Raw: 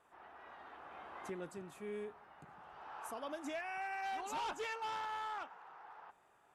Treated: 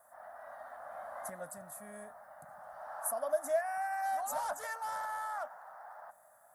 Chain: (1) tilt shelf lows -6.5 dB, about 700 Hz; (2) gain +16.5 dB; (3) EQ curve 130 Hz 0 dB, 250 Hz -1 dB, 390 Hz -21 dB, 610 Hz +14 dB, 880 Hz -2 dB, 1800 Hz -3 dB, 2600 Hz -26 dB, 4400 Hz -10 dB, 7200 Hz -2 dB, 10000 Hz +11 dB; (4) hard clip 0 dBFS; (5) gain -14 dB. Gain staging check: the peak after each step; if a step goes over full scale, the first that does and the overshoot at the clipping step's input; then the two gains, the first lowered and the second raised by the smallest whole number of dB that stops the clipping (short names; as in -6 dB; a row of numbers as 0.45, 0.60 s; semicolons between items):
-27.0, -10.5, -6.0, -6.0, -20.0 dBFS; no overload